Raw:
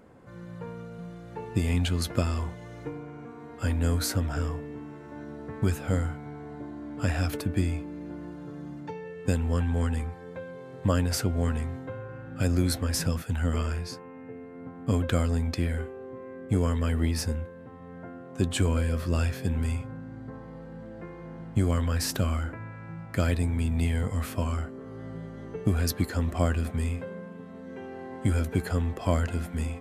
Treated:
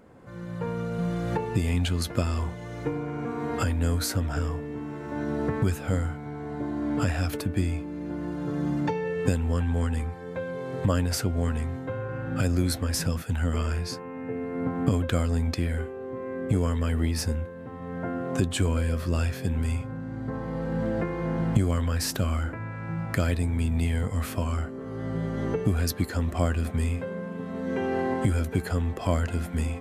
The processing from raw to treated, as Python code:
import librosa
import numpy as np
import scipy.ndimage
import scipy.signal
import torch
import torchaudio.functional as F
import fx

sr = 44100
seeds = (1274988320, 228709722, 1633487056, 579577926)

y = fx.recorder_agc(x, sr, target_db=-18.0, rise_db_per_s=12.0, max_gain_db=30)